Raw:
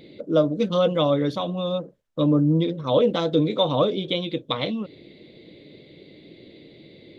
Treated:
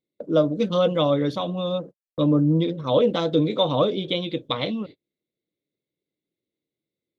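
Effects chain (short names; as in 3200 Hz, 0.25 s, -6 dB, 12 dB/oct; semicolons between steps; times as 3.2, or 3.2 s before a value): gate -37 dBFS, range -41 dB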